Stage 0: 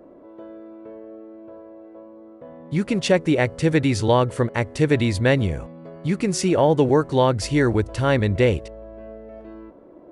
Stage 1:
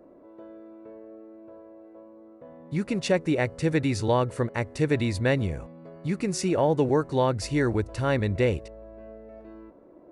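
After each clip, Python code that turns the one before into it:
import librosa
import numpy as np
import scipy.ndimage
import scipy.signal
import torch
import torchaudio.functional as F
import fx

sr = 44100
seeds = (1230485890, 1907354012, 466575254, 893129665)

y = fx.notch(x, sr, hz=3200.0, q=8.7)
y = y * librosa.db_to_amplitude(-5.5)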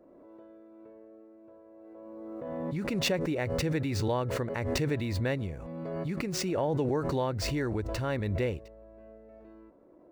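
y = scipy.ndimage.median_filter(x, 5, mode='constant')
y = fx.pre_swell(y, sr, db_per_s=21.0)
y = y * librosa.db_to_amplitude(-7.5)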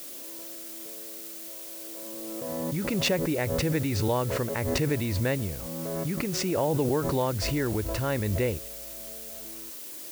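y = fx.dmg_noise_colour(x, sr, seeds[0], colour='blue', level_db=-44.0)
y = y * librosa.db_to_amplitude(3.0)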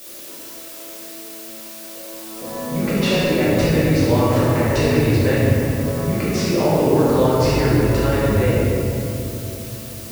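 y = fx.room_shoebox(x, sr, seeds[1], volume_m3=140.0, walls='hard', distance_m=1.2)
y = fx.slew_limit(y, sr, full_power_hz=290.0)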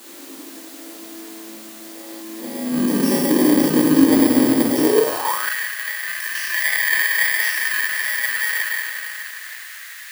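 y = fx.bit_reversed(x, sr, seeds[2], block=32)
y = fx.filter_sweep_highpass(y, sr, from_hz=270.0, to_hz=1800.0, start_s=4.8, end_s=5.54, q=5.7)
y = y * librosa.db_to_amplitude(-4.0)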